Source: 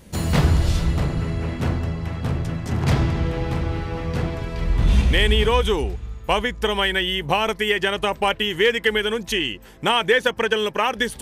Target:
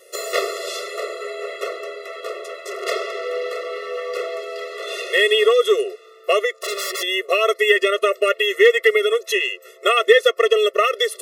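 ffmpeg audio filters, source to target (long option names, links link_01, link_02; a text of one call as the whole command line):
ffmpeg -i in.wav -filter_complex "[0:a]asettb=1/sr,asplit=3[link_01][link_02][link_03];[link_01]atrim=end=6.554[link_04];[link_02]atrim=start=6.55:end=7.03,asetpts=PTS-STARTPTS,afade=type=in:duration=0.004:curve=qsin,afade=type=out:start_time=0.476:duration=0.004:curve=qsin,aeval=exprs='0.0631*(abs(mod(val(0)/0.0631+3,4)-2)-1)':channel_layout=same[link_05];[link_03]atrim=start=7.026[link_06];[link_04][link_05]acrossfade=duration=0.004:curve1=hsin:curve2=qsin[link_07];[link_07][link_06]acrossfade=duration=0.004:curve1=qsin:curve2=hsin,afftfilt=real='re*eq(mod(floor(b*sr/1024/360),2),1)':imag='im*eq(mod(floor(b*sr/1024/360),2),1)':win_size=1024:overlap=0.75,volume=6.5dB" out.wav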